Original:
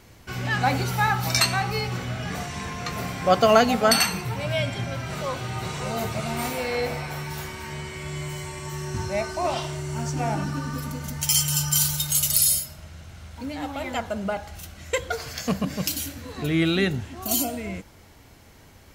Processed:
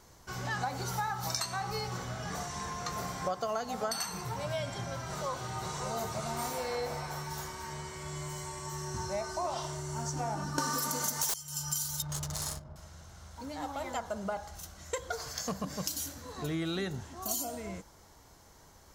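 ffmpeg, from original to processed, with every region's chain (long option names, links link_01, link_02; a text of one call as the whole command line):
ffmpeg -i in.wav -filter_complex "[0:a]asettb=1/sr,asplit=3[link_01][link_02][link_03];[link_01]atrim=end=10.584[link_04];[link_02]atrim=start=10.58:end=11.34,asetpts=PTS-STARTPTS,afade=type=in:duration=0.004:curve=qsin,afade=type=out:start_time=0.756:duration=0.004:curve=qsin,highpass=250,highshelf=frequency=4500:gain=8,aeval=exprs='0.944*sin(PI/2*8.91*val(0)/0.944)':channel_layout=same[link_05];[link_03]atrim=start=11.336[link_06];[link_04][link_05]acrossfade=duration=0.004:curve1=hsin:curve2=qsin[link_07];[link_07][link_06]acrossfade=duration=0.004:curve1=qsin:curve2=hsin,asettb=1/sr,asplit=3[link_08][link_09][link_10];[link_08]atrim=end=12.024[link_11];[link_09]atrim=start=12.02:end=12.76,asetpts=PTS-STARTPTS,afade=type=in:duration=0.004:curve=qsin,afade=type=out:start_time=0.736:duration=0.004:curve=qsin,tiltshelf=frequency=1400:gain=5.5,adynamicsmooth=sensitivity=7.5:basefreq=520[link_12];[link_10]atrim=start=12.756[link_13];[link_11][link_12]acrossfade=duration=0.004:curve1=hsin:curve2=qsin[link_14];[link_14][link_13]acrossfade=duration=0.004:curve1=qsin:curve2=hsin,equalizer=frequency=100:width_type=o:width=0.67:gain=-6,equalizer=frequency=250:width_type=o:width=0.67:gain=-5,equalizer=frequency=1000:width_type=o:width=0.67:gain=5,equalizer=frequency=2500:width_type=o:width=0.67:gain=-9,equalizer=frequency=6300:width_type=o:width=0.67:gain=6,acompressor=threshold=-24dB:ratio=12,volume=-6dB" out.wav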